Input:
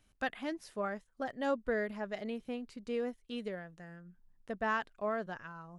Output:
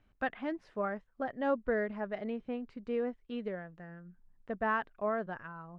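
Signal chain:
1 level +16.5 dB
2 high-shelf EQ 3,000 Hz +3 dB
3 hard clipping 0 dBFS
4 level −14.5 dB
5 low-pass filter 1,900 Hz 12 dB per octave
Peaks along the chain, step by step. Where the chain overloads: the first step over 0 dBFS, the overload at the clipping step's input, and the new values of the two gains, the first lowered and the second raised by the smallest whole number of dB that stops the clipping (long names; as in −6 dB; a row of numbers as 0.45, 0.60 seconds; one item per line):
−5.0, −4.5, −4.5, −19.0, −19.5 dBFS
no step passes full scale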